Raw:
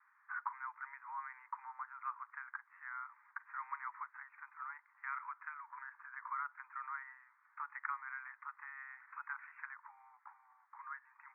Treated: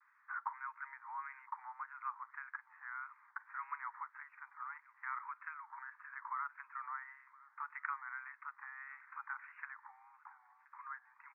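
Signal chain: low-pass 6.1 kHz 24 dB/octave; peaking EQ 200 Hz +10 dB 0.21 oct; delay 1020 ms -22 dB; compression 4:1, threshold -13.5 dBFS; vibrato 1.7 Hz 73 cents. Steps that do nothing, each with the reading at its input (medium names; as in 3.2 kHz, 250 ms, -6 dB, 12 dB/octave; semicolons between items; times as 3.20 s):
low-pass 6.1 kHz: input has nothing above 2.4 kHz; peaking EQ 200 Hz: input has nothing below 760 Hz; compression, threshold -13.5 dBFS: peak at its input -23.0 dBFS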